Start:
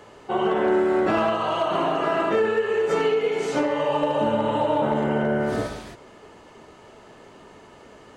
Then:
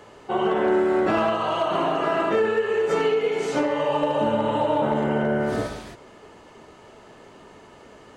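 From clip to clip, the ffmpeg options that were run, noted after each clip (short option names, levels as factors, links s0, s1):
-af anull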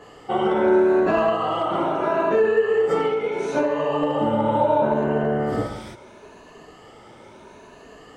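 -af "afftfilt=real='re*pow(10,9/40*sin(2*PI*(1.5*log(max(b,1)*sr/1024/100)/log(2)-(0.75)*(pts-256)/sr)))':imag='im*pow(10,9/40*sin(2*PI*(1.5*log(max(b,1)*sr/1024/100)/log(2)-(0.75)*(pts-256)/sr)))':win_size=1024:overlap=0.75,adynamicequalizer=threshold=0.0141:dfrequency=1700:dqfactor=0.7:tfrequency=1700:tqfactor=0.7:attack=5:release=100:ratio=0.375:range=3.5:mode=cutabove:tftype=highshelf,volume=1.12"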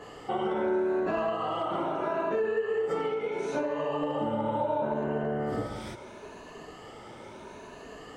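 -af "acompressor=threshold=0.02:ratio=2"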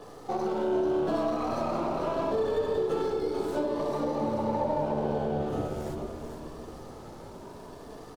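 -filter_complex "[0:a]acrossover=split=120|1500[s0][s1][s2];[s2]aeval=exprs='abs(val(0))':c=same[s3];[s0][s1][s3]amix=inputs=3:normalize=0,asplit=7[s4][s5][s6][s7][s8][s9][s10];[s5]adelay=439,afreqshift=-69,volume=0.447[s11];[s6]adelay=878,afreqshift=-138,volume=0.237[s12];[s7]adelay=1317,afreqshift=-207,volume=0.126[s13];[s8]adelay=1756,afreqshift=-276,volume=0.0668[s14];[s9]adelay=2195,afreqshift=-345,volume=0.0351[s15];[s10]adelay=2634,afreqshift=-414,volume=0.0186[s16];[s4][s11][s12][s13][s14][s15][s16]amix=inputs=7:normalize=0"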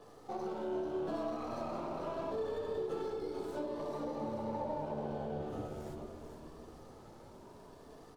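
-af "flanger=delay=8.5:depth=4:regen=-70:speed=0.68:shape=sinusoidal,volume=0.531"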